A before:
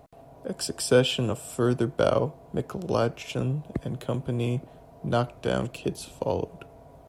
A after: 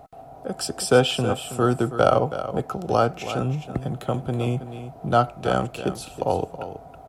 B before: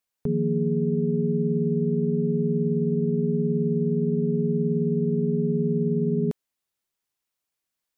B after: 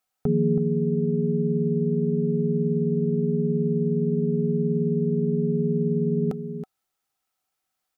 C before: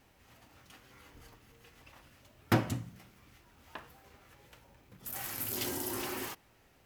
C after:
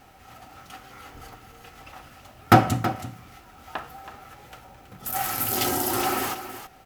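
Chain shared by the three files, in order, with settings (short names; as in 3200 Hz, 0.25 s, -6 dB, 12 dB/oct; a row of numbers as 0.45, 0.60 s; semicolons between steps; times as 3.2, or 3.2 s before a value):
small resonant body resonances 760/1300 Hz, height 13 dB, ringing for 40 ms; on a send: echo 0.324 s -11.5 dB; on the sum: match loudness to -24 LUFS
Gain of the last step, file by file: +2.0, +2.5, +10.0 dB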